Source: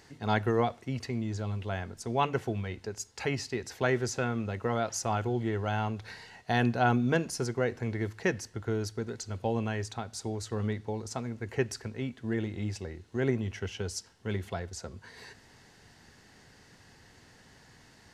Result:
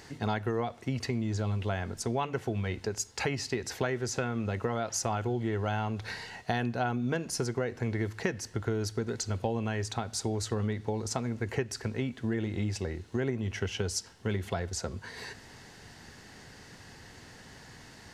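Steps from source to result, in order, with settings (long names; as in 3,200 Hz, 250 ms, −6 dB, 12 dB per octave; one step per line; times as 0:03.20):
downward compressor 6 to 1, threshold −34 dBFS, peak gain reduction 13.5 dB
level +6.5 dB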